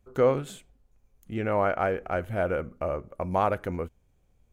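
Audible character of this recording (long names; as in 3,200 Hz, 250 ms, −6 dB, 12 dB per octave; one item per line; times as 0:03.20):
background noise floor −66 dBFS
spectral slope −3.5 dB per octave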